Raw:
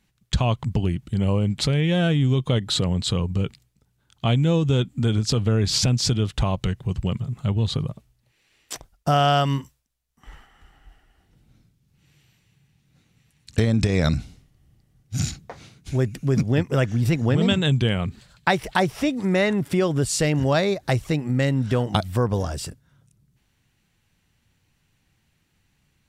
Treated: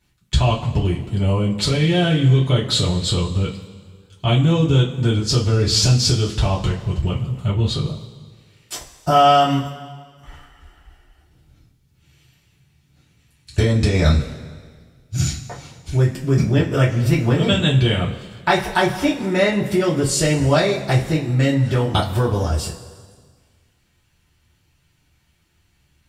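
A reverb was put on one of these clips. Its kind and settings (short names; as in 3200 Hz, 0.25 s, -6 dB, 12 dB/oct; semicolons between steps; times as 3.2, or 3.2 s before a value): two-slope reverb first 0.24 s, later 1.7 s, from -18 dB, DRR -6.5 dB; gain -3 dB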